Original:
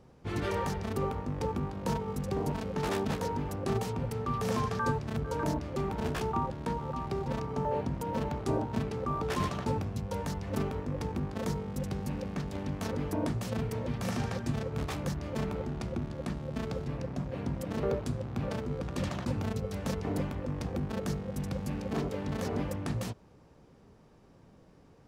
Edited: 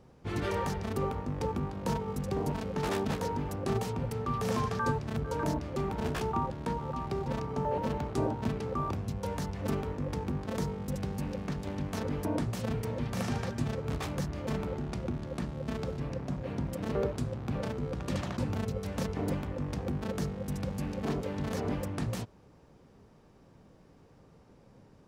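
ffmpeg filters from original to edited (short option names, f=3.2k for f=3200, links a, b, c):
-filter_complex "[0:a]asplit=3[a][b][c];[a]atrim=end=7.782[d];[b]atrim=start=8.088:end=9.222[e];[c]atrim=start=9.788[f];[d][e]acrossfade=d=0.004:c1=hsin:c2=hsin[g];[g][f]acrossfade=d=0.004:c1=hsin:c2=hsin"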